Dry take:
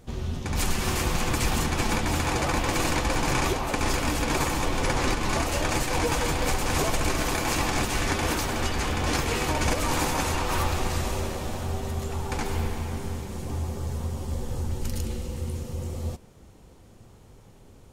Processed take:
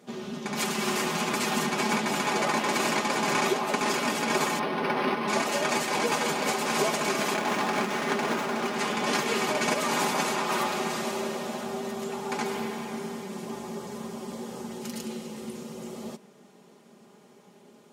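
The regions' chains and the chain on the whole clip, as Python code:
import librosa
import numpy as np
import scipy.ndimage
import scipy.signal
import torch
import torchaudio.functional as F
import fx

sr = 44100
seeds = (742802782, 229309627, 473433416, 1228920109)

y = fx.chain(x, sr, fx.high_shelf(hz=4600.0, db=-4.0),
    fx.resample_linear(factor=6), at=(4.59, 5.28))
y = fx.chain(y, sr, fx.peak_eq(hz=12000.0, db=-5.0, octaves=0.34),
    fx.running_max(window=9), at=(7.34, 8.76))
y = scipy.signal.sosfilt(scipy.signal.butter(4, 190.0, 'highpass', fs=sr, output='sos'), y)
y = fx.high_shelf(y, sr, hz=7100.0, db=-6.0)
y = y + 0.65 * np.pad(y, (int(4.9 * sr / 1000.0), 0))[:len(y)]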